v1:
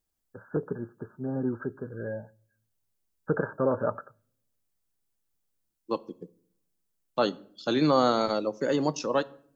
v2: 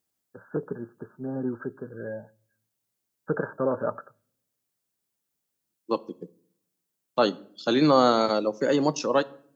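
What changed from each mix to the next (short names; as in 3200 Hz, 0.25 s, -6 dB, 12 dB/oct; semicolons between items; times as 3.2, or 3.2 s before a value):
second voice +3.5 dB; master: add HPF 130 Hz 12 dB/oct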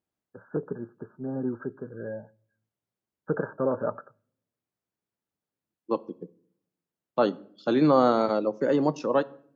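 second voice: add high shelf 4900 Hz -10.5 dB; master: add high shelf 2100 Hz -8 dB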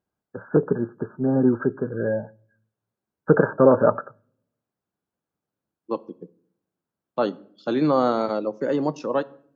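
first voice +11.5 dB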